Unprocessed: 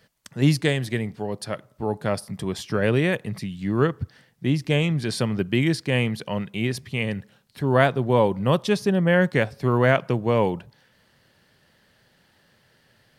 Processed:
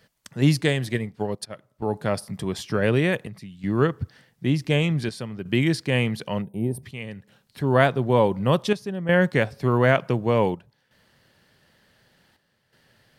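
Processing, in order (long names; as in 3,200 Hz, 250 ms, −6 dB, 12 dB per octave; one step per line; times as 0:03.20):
square-wave tremolo 0.55 Hz, depth 65%, duty 80%
0:00.94–0:01.54: transient designer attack +5 dB, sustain −9 dB
0:06.42–0:06.83: gain on a spectral selection 1,000–8,400 Hz −23 dB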